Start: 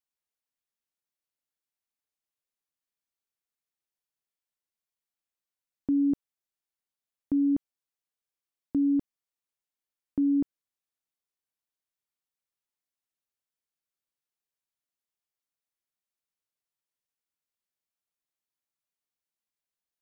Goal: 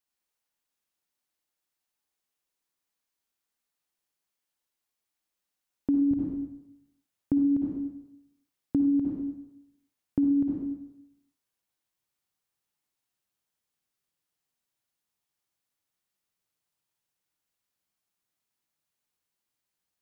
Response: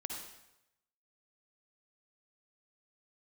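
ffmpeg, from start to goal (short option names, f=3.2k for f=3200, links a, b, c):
-filter_complex "[0:a]asetnsamples=n=441:p=0,asendcmd='6.11 equalizer g 6',equalizer=f=120:w=1.3:g=-2.5[a];[1:a]atrim=start_sample=2205[b];[a][b]afir=irnorm=-1:irlink=0,acompressor=threshold=-29dB:ratio=6,volume=7dB"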